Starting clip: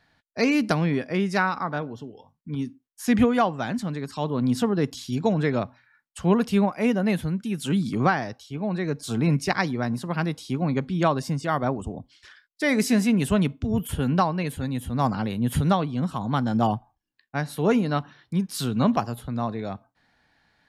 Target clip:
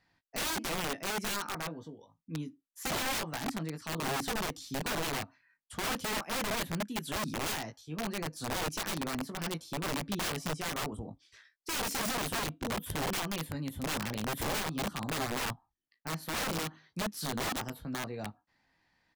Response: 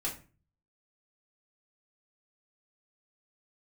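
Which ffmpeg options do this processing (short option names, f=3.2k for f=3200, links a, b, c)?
-filter_complex "[0:a]asetrate=47628,aresample=44100,asplit=2[a][b];[b]adelay=19,volume=-6.5dB[c];[a][c]amix=inputs=2:normalize=0,aeval=exprs='(mod(9.44*val(0)+1,2)-1)/9.44':c=same,volume=-9dB"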